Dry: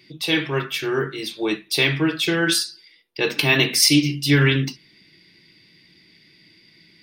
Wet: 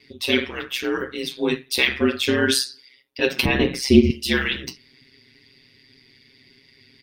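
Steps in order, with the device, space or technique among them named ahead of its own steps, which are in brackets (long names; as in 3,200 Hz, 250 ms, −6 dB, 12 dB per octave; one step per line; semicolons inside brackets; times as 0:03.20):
0:03.45–0:04.10: spectral tilt −4.5 dB per octave
ring-modulated robot voice (ring modulation 65 Hz; comb filter 7.4 ms, depth 84%)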